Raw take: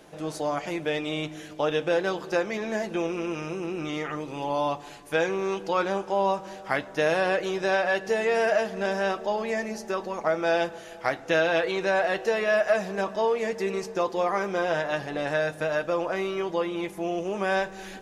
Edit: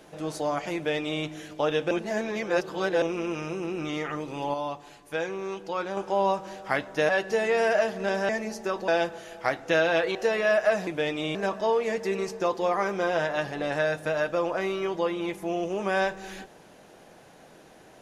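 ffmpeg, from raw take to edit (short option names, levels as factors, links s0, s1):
-filter_complex "[0:a]asplit=11[s0][s1][s2][s3][s4][s5][s6][s7][s8][s9][s10];[s0]atrim=end=1.912[s11];[s1]atrim=start=1.908:end=3.022,asetpts=PTS-STARTPTS,areverse[s12];[s2]atrim=start=3.018:end=4.542[s13];[s3]atrim=start=4.538:end=5.972,asetpts=PTS-STARTPTS,volume=0.531[s14];[s4]atrim=start=5.968:end=7.092[s15];[s5]atrim=start=7.858:end=9.062[s16];[s6]atrim=start=9.528:end=10.122[s17];[s7]atrim=start=10.478:end=11.752[s18];[s8]atrim=start=12.178:end=12.902[s19];[s9]atrim=start=0.748:end=1.232[s20];[s10]atrim=start=12.898[s21];[s11][s12]acrossfade=d=0.004:c1=hsin:c2=hsin[s22];[s22][s13]acrossfade=d=0.004:c1=hsin:c2=hsin[s23];[s23][s14]acrossfade=d=0.004:c1=hsin:c2=hsin[s24];[s24][s15]acrossfade=d=0.004:c1=hsin:c2=hsin[s25];[s25][s16]acrossfade=d=0.004:c1=hsin:c2=hsin[s26];[s26][s17]acrossfade=d=0.004:c1=hsin:c2=hsin[s27];[s27][s18]acrossfade=d=0.004:c1=hsin:c2=hsin[s28];[s28][s19]acrossfade=d=0.004:c1=hsin:c2=hsin[s29];[s29][s20]acrossfade=d=0.004:c1=hsin:c2=hsin[s30];[s30][s21]acrossfade=d=0.004:c1=hsin:c2=hsin"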